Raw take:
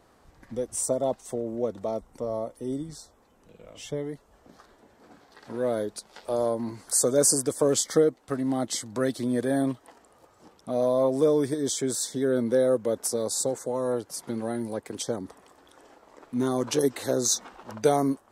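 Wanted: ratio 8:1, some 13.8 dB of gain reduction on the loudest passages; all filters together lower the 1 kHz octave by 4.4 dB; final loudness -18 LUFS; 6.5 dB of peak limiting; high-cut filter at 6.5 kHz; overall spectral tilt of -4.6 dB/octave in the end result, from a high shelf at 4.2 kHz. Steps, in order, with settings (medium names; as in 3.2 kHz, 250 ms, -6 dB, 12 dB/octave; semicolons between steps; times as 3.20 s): low-pass 6.5 kHz; peaking EQ 1 kHz -6.5 dB; treble shelf 4.2 kHz -5.5 dB; compression 8:1, threshold -32 dBFS; trim +20.5 dB; peak limiter -7.5 dBFS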